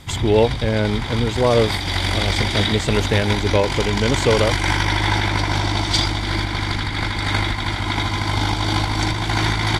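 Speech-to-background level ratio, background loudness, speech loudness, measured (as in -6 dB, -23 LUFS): 0.5 dB, -21.0 LUFS, -20.5 LUFS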